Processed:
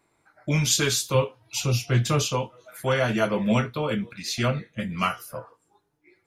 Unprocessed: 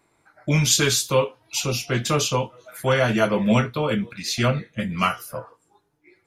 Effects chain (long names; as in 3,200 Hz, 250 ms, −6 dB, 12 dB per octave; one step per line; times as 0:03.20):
0:01.14–0:02.22: parametric band 110 Hz +11.5 dB 0.68 octaves
level −3.5 dB